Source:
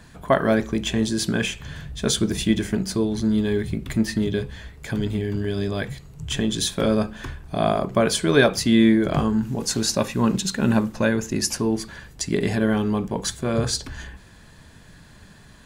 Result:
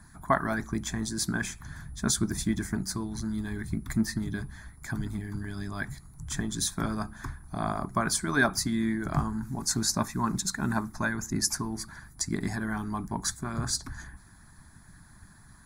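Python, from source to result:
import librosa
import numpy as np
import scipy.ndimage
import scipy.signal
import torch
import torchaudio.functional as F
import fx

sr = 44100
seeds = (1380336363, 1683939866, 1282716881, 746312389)

y = x + 10.0 ** (-52.0 / 20.0) * np.sin(2.0 * np.pi * 10000.0 * np.arange(len(x)) / sr)
y = fx.hpss(y, sr, part='harmonic', gain_db=-10)
y = fx.fixed_phaser(y, sr, hz=1200.0, stages=4)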